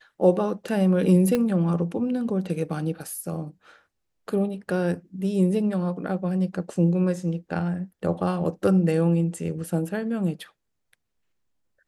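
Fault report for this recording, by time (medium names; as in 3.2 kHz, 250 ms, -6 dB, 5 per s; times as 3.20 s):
1.35 s: pop -11 dBFS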